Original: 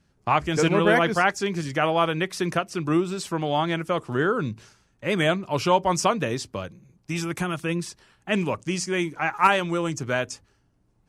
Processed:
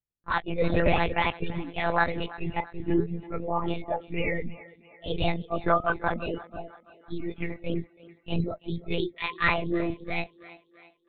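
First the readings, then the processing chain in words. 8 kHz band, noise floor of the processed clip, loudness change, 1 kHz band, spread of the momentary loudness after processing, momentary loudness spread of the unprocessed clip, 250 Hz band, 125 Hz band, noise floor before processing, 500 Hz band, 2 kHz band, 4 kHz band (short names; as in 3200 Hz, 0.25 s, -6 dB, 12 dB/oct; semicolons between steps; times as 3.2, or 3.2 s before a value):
under -40 dB, -65 dBFS, -5.0 dB, -5.5 dB, 12 LU, 12 LU, -5.0 dB, -4.0 dB, -66 dBFS, -5.5 dB, -4.0 dB, -6.5 dB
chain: inharmonic rescaling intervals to 122%; spectral noise reduction 29 dB; monotone LPC vocoder at 8 kHz 170 Hz; thinning echo 0.333 s, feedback 50%, high-pass 230 Hz, level -18 dB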